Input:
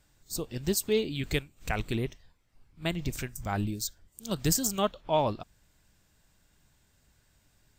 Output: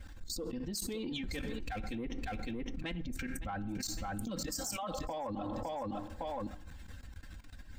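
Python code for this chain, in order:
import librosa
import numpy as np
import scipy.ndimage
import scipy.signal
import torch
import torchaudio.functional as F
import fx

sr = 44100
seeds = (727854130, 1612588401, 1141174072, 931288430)

y = fx.bin_expand(x, sr, power=1.5)
y = fx.lowpass(y, sr, hz=1800.0, slope=6)
y = fx.power_curve(y, sr, exponent=0.7, at=(1.23, 1.81))
y = y + 0.94 * np.pad(y, (int(3.8 * sr / 1000.0), 0))[:len(y)]
y = fx.level_steps(y, sr, step_db=22)
y = fx.ladder_highpass(y, sr, hz=580.0, resonance_pct=55, at=(4.45, 4.92), fade=0.02)
y = 10.0 ** (-36.5 / 20.0) * np.tanh(y / 10.0 ** (-36.5 / 20.0))
y = fx.hpss(y, sr, part='harmonic', gain_db=-8)
y = fx.echo_feedback(y, sr, ms=559, feedback_pct=18, wet_db=-18.0)
y = fx.rev_plate(y, sr, seeds[0], rt60_s=0.77, hf_ratio=0.5, predelay_ms=0, drr_db=16.5)
y = fx.env_flatten(y, sr, amount_pct=100)
y = F.gain(torch.from_numpy(y), 6.5).numpy()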